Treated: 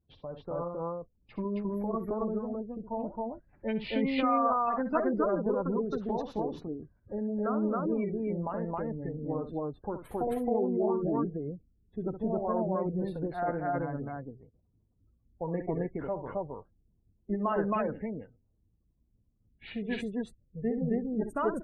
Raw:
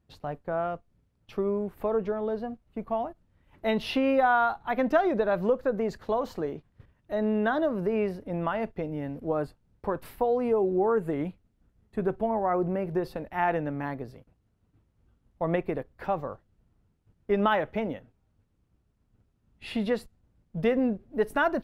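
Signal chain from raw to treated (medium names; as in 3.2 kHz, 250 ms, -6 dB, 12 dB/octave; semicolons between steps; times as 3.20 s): spectral gate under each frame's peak -25 dB strong; loudspeakers at several distances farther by 22 m -10 dB, 92 m 0 dB; formant shift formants -3 st; trim -6 dB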